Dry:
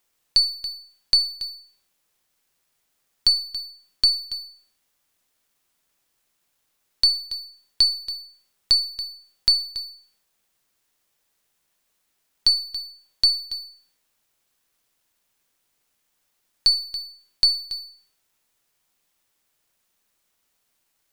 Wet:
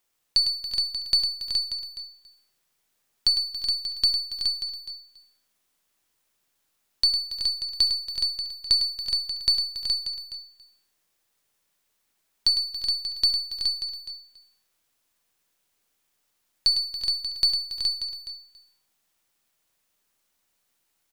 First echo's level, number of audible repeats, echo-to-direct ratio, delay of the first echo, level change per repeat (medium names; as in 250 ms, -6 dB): -9.5 dB, 5, -2.0 dB, 104 ms, no regular repeats